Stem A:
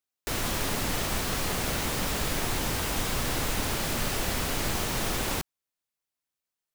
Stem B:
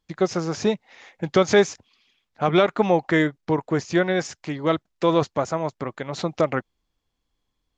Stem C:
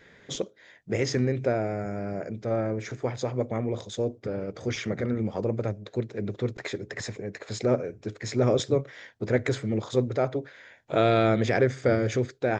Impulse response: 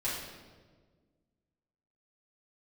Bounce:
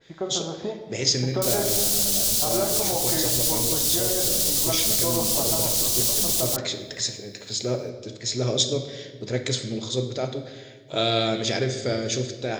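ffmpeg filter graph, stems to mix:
-filter_complex "[0:a]bass=f=250:g=5,treble=f=4000:g=14,alimiter=limit=0.178:level=0:latency=1:release=313,adelay=1150,volume=0.794[s0];[1:a]lowpass=f=1900:w=0.5412,lowpass=f=1900:w=1.3066,equalizer=f=720:w=1.5:g=7.5,volume=0.355,asplit=2[s1][s2];[s2]volume=0.282[s3];[2:a]adynamicequalizer=threshold=0.0112:dfrequency=2200:dqfactor=0.7:tfrequency=2200:tqfactor=0.7:attack=5:release=100:ratio=0.375:range=2:mode=boostabove:tftype=highshelf,volume=0.531,asplit=2[s4][s5];[s5]volume=0.355[s6];[s0][s1]amix=inputs=2:normalize=0,acompressor=threshold=0.0355:ratio=6,volume=1[s7];[3:a]atrim=start_sample=2205[s8];[s3][s6]amix=inputs=2:normalize=0[s9];[s9][s8]afir=irnorm=-1:irlink=0[s10];[s4][s7][s10]amix=inputs=3:normalize=0,highshelf=f=2700:t=q:w=1.5:g=11"

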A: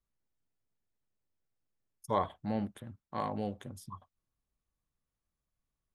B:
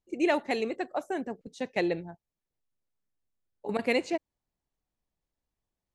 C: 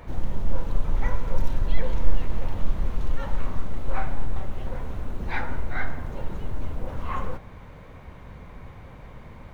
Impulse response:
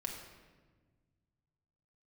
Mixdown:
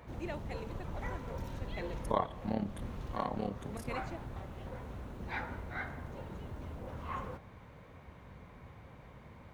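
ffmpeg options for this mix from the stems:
-filter_complex "[0:a]tremolo=f=35:d=0.889,volume=1.12,asplit=3[s0][s1][s2];[s1]volume=0.282[s3];[1:a]volume=0.15[s4];[2:a]volume=0.398[s5];[s2]apad=whole_len=420598[s6];[s5][s6]sidechaincompress=threshold=0.0126:ratio=8:attack=34:release=390[s7];[3:a]atrim=start_sample=2205[s8];[s3][s8]afir=irnorm=-1:irlink=0[s9];[s0][s4][s7][s9]amix=inputs=4:normalize=0,highpass=62"

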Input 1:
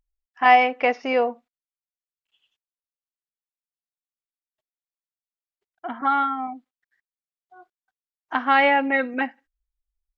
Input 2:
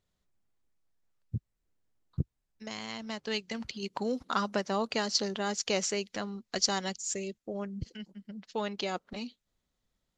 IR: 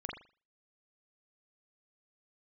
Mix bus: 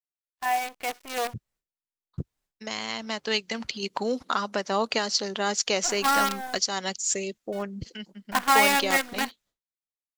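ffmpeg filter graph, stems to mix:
-filter_complex "[0:a]bandreject=f=1300:w=13,aecho=1:1:2.8:0.5,acrusher=bits=4:dc=4:mix=0:aa=0.000001,volume=0.2[s0];[1:a]alimiter=limit=0.0944:level=0:latency=1:release=334,volume=0.631[s1];[s0][s1]amix=inputs=2:normalize=0,dynaudnorm=f=560:g=5:m=4.22,agate=range=0.0224:threshold=0.00251:ratio=3:detection=peak,lowshelf=f=250:g=-10"

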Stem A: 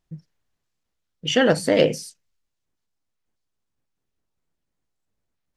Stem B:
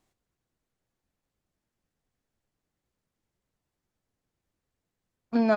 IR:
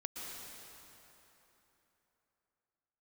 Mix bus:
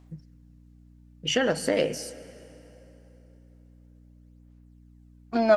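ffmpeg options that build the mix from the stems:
-filter_complex "[0:a]equalizer=f=3500:w=5:g=-6.5,acompressor=threshold=0.126:ratio=6,volume=0.794,asplit=2[s0][s1];[s1]volume=0.2[s2];[1:a]aphaser=in_gain=1:out_gain=1:delay=3.4:decay=0.57:speed=0.44:type=sinusoidal,aeval=exprs='val(0)+0.00316*(sin(2*PI*60*n/s)+sin(2*PI*2*60*n/s)/2+sin(2*PI*3*60*n/s)/3+sin(2*PI*4*60*n/s)/4+sin(2*PI*5*60*n/s)/5)':c=same,volume=1.33[s3];[2:a]atrim=start_sample=2205[s4];[s2][s4]afir=irnorm=-1:irlink=0[s5];[s0][s3][s5]amix=inputs=3:normalize=0,lowshelf=f=220:g=-5.5"

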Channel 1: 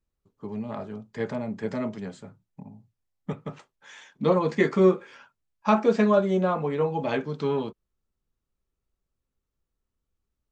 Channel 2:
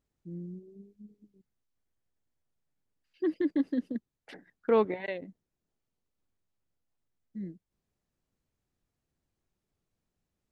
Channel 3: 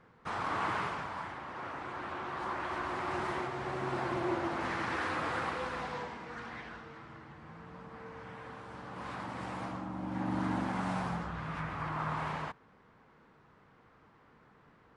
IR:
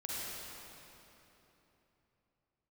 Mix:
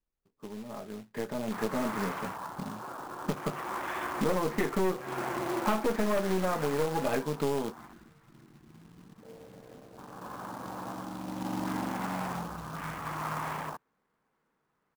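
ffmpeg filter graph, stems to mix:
-filter_complex "[0:a]aeval=exprs='(tanh(11.2*val(0)+0.65)-tanh(0.65))/11.2':c=same,lowpass=2300,volume=0.75[s0];[2:a]afwtdn=0.01,adelay=1250,volume=0.299[s1];[s0][s1]amix=inputs=2:normalize=0,acrusher=bits=3:mode=log:mix=0:aa=0.000001,acompressor=threshold=0.0126:ratio=4,volume=1,equalizer=f=87:w=1.3:g=-10,dynaudnorm=f=860:g=3:m=3.98"

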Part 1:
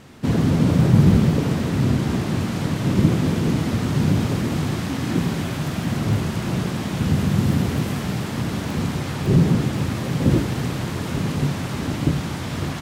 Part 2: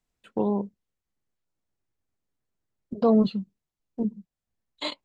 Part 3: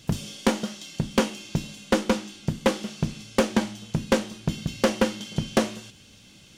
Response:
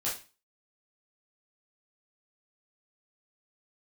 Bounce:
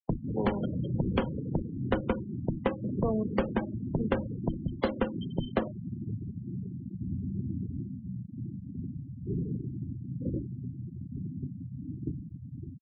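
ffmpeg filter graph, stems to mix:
-filter_complex "[0:a]volume=0.188,asplit=2[s0][s1];[s1]volume=0.282[s2];[1:a]highpass=59,lowshelf=f=76:g=-2.5,volume=0.668,asplit=2[s3][s4];[s4]volume=0.168[s5];[2:a]volume=1,asplit=2[s6][s7];[s7]volume=0.2[s8];[3:a]atrim=start_sample=2205[s9];[s2][s5][s8]amix=inputs=3:normalize=0[s10];[s10][s9]afir=irnorm=-1:irlink=0[s11];[s0][s3][s6][s11]amix=inputs=4:normalize=0,lowpass=f=2700:p=1,afftfilt=real='re*gte(hypot(re,im),0.0562)':imag='im*gte(hypot(re,im),0.0562)':win_size=1024:overlap=0.75,acrossover=split=84|250[s12][s13][s14];[s13]acompressor=threshold=0.0178:ratio=4[s15];[s14]acompressor=threshold=0.0398:ratio=4[s16];[s12][s15][s16]amix=inputs=3:normalize=0"

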